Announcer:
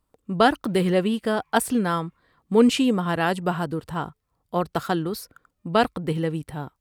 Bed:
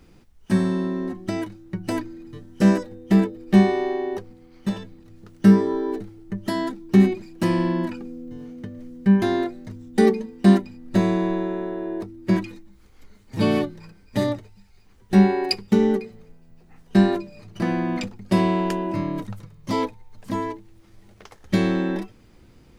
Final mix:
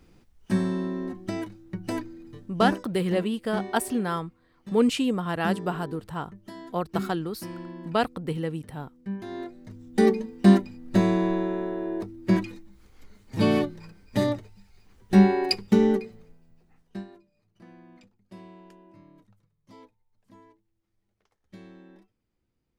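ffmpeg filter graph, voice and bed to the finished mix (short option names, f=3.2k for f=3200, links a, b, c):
-filter_complex "[0:a]adelay=2200,volume=-4.5dB[a];[1:a]volume=11dB,afade=t=out:st=2.28:d=0.6:silence=0.237137,afade=t=in:st=9.25:d=0.97:silence=0.16788,afade=t=out:st=15.9:d=1.15:silence=0.0530884[b];[a][b]amix=inputs=2:normalize=0"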